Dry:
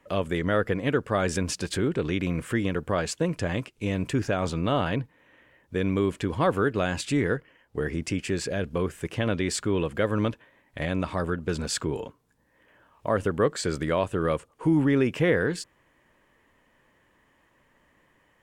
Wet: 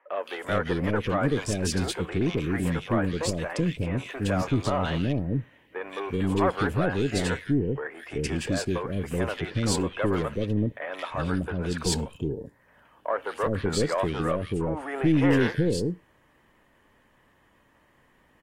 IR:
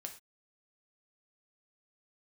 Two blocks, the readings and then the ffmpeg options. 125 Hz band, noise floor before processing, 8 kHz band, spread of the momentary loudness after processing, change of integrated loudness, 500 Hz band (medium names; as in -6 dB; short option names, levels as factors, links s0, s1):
+1.5 dB, -65 dBFS, 0.0 dB, 8 LU, 0.0 dB, -1.0 dB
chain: -filter_complex "[0:a]equalizer=f=7000:t=o:w=0.93:g=-3.5,aeval=exprs='0.316*(cos(1*acos(clip(val(0)/0.316,-1,1)))-cos(1*PI/2))+0.0282*(cos(4*acos(clip(val(0)/0.316,-1,1)))-cos(4*PI/2))+0.0141*(cos(5*acos(clip(val(0)/0.316,-1,1)))-cos(5*PI/2))':c=same,acrossover=split=480|2200[s0][s1][s2];[s2]adelay=170[s3];[s0]adelay=380[s4];[s4][s1][s3]amix=inputs=3:normalize=0,asplit=2[s5][s6];[1:a]atrim=start_sample=2205,atrim=end_sample=6174[s7];[s6][s7]afir=irnorm=-1:irlink=0,volume=0.168[s8];[s5][s8]amix=inputs=2:normalize=0" -ar 44100 -c:a aac -b:a 48k